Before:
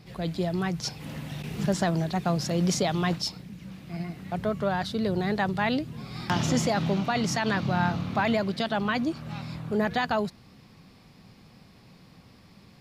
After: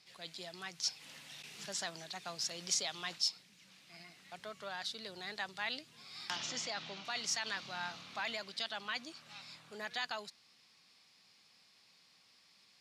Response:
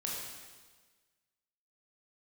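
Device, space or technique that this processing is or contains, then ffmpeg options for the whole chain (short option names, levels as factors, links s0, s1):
piezo pickup straight into a mixer: -filter_complex "[0:a]lowpass=6300,aderivative,asettb=1/sr,asplit=3[s0][s1][s2];[s0]atrim=end=6.364[s3];[s1]atrim=start=6.36:end=7.05,asetpts=PTS-STARTPTS,afade=t=in:d=0.004:c=qsin,afade=t=out:st=0.686:d=0.004:c=qsin,lowpass=5200[s4];[s2]atrim=start=7.046[s5];[s3][s4]acrossfade=d=0.004:c1=hsin:c2=qsin[s6];[s6][s5]acrossfade=d=0.004:c1=qsin:c2=hsin,volume=1.33"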